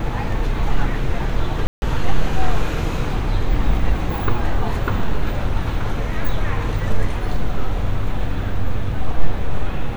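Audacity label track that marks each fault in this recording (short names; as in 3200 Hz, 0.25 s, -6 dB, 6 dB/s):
1.670000	1.820000	gap 0.151 s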